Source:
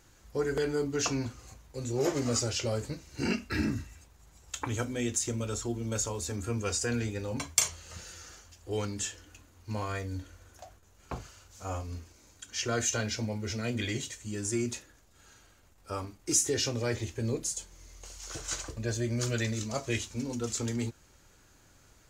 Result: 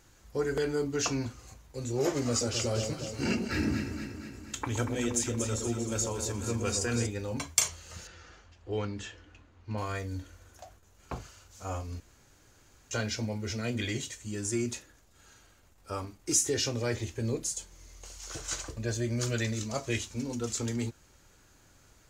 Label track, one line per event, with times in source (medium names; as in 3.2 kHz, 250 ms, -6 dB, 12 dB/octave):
2.290000	7.070000	echo whose repeats swap between lows and highs 118 ms, split 830 Hz, feedback 76%, level -4.5 dB
8.070000	9.780000	low-pass 3.2 kHz
12.000000	12.910000	room tone